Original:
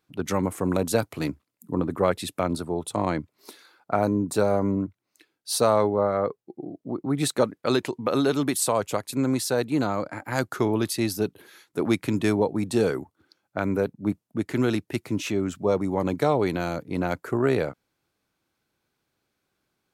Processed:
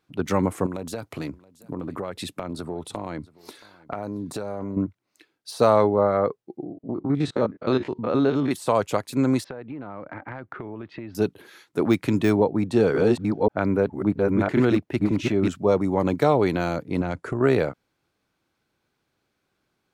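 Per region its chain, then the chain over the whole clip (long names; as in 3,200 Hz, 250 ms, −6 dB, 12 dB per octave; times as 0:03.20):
0:00.66–0:04.77: downward compressor 12 to 1, threshold −29 dBFS + single-tap delay 675 ms −22.5 dB
0:06.63–0:08.51: spectrum averaged block by block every 50 ms + low-pass filter 5,100 Hz + high-shelf EQ 2,000 Hz −6.5 dB
0:09.44–0:11.15: low-pass filter 2,500 Hz 24 dB per octave + downward compressor 16 to 1, threshold −34 dBFS
0:12.40–0:15.48: delay that plays each chunk backwards 542 ms, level −0.5 dB + high-shelf EQ 4,700 Hz −10 dB
0:17.01–0:17.41: Chebyshev low-pass filter 11,000 Hz, order 8 + low-shelf EQ 210 Hz +8.5 dB + downward compressor 4 to 1, threshold −26 dBFS
whole clip: high-shelf EQ 7,900 Hz −9 dB; de-essing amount 75%; level +3 dB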